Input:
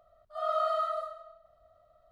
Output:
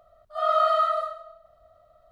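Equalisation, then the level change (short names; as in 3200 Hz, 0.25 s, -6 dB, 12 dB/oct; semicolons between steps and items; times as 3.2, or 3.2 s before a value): dynamic EQ 2200 Hz, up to +6 dB, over -46 dBFS, Q 0.77; +5.5 dB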